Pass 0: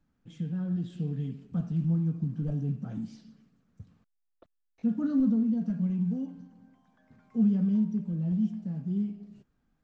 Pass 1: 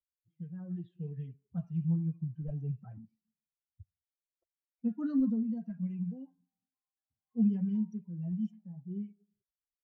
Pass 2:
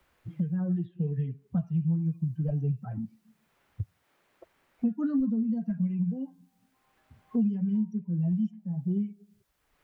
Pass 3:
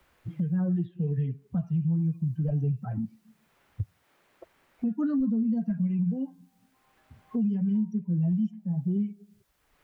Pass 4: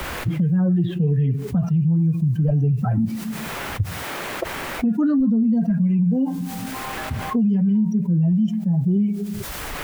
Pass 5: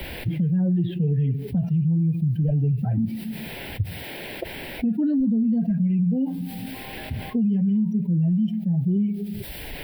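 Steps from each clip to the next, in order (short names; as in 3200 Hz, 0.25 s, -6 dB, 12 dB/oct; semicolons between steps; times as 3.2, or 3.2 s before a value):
per-bin expansion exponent 2; low-pass opened by the level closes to 320 Hz, open at -28.5 dBFS; gain -1.5 dB
three-band squash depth 100%; gain +6 dB
limiter -24.5 dBFS, peak gain reduction 6.5 dB; gain +3.5 dB
fast leveller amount 70%; gain +7 dB
fixed phaser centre 2900 Hz, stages 4; gain -2.5 dB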